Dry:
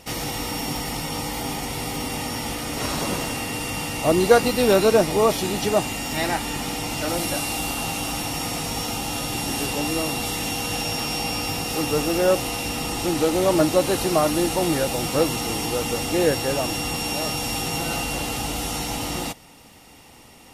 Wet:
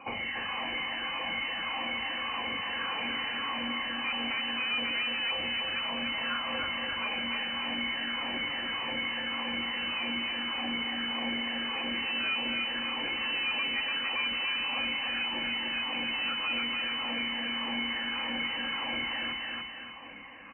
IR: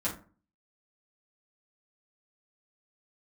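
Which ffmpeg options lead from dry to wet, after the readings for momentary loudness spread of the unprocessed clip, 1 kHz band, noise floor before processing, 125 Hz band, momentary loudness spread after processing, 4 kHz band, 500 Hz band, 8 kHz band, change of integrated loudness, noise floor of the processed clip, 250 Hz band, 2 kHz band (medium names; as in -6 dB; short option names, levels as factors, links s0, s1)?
9 LU, -10.0 dB, -48 dBFS, -23.5 dB, 3 LU, -0.5 dB, -22.0 dB, under -40 dB, -7.5 dB, -37 dBFS, -13.5 dB, -0.5 dB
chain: -filter_complex "[0:a]afftfilt=real='re*pow(10,20/40*sin(2*PI*(0.52*log(max(b,1)*sr/1024/100)/log(2)-(1.7)*(pts-256)/sr)))':imag='im*pow(10,20/40*sin(2*PI*(0.52*log(max(b,1)*sr/1024/100)/log(2)-(1.7)*(pts-256)/sr)))':win_size=1024:overlap=0.75,adynamicequalizer=threshold=0.0316:dfrequency=330:dqfactor=3.3:tfrequency=330:tqfactor=3.3:attack=5:release=100:ratio=0.375:range=1.5:mode=boostabove:tftype=bell,acrossover=split=690[s0][s1];[s1]acontrast=70[s2];[s0][s2]amix=inputs=2:normalize=0,aeval=exprs='(tanh(6.31*val(0)+0.3)-tanh(0.3))/6.31':c=same,acrusher=bits=7:mix=0:aa=0.000001,equalizer=f=170:t=o:w=2.6:g=-13.5,lowpass=f=2600:t=q:w=0.5098,lowpass=f=2600:t=q:w=0.6013,lowpass=f=2600:t=q:w=0.9,lowpass=f=2600:t=q:w=2.563,afreqshift=-3000,bandreject=f=580:w=12,aecho=1:1:290|580|870|1160|1450:0.631|0.227|0.0818|0.0294|0.0106,acompressor=threshold=0.0316:ratio=2,highpass=44,aecho=1:1:3.7:0.36,volume=0.562"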